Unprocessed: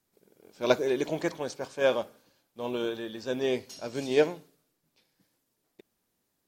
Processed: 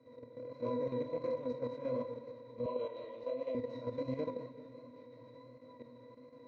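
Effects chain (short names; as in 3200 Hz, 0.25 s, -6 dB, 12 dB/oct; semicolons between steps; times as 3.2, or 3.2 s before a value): per-bin compression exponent 0.4; octave resonator B, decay 0.18 s; chorus 1.4 Hz, delay 19 ms, depth 7.9 ms; level quantiser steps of 10 dB; 2.66–3.55 speaker cabinet 490–7300 Hz, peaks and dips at 630 Hz +8 dB, 1600 Hz -6 dB, 2900 Hz +7 dB, 5400 Hz -5 dB; warbling echo 0.192 s, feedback 69%, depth 108 cents, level -15.5 dB; gain +5 dB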